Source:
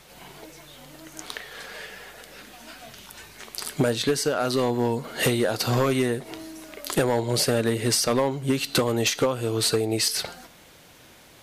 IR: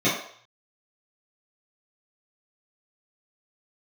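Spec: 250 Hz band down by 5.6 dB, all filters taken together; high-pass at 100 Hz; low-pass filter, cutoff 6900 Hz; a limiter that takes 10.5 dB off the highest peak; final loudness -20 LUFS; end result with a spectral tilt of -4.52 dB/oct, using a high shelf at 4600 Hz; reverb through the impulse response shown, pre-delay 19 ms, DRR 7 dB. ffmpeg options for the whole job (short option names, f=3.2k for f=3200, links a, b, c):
-filter_complex "[0:a]highpass=100,lowpass=6.9k,equalizer=f=250:t=o:g=-7,highshelf=f=4.6k:g=-6,alimiter=limit=-23.5dB:level=0:latency=1,asplit=2[a][b];[1:a]atrim=start_sample=2205,adelay=19[c];[b][c]afir=irnorm=-1:irlink=0,volume=-23.5dB[d];[a][d]amix=inputs=2:normalize=0,volume=12dB"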